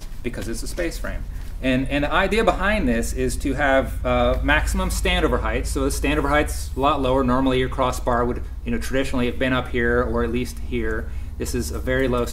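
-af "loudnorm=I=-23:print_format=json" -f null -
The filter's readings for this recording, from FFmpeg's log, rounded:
"input_i" : "-22.4",
"input_tp" : "-3.4",
"input_lra" : "2.6",
"input_thresh" : "-32.5",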